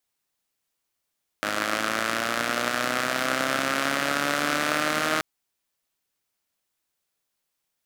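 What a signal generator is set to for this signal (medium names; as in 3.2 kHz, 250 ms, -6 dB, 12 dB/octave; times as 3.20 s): four-cylinder engine model, changing speed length 3.78 s, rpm 3100, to 4700, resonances 290/600/1300 Hz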